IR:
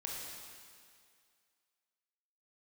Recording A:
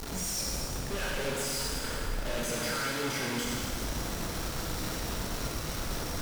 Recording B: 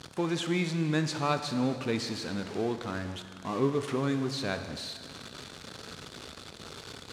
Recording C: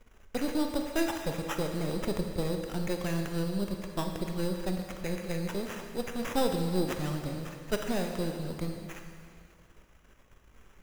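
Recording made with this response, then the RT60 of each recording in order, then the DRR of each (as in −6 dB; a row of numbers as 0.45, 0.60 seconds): A; 2.2, 2.2, 2.2 seconds; −3.5, 8.0, 3.5 decibels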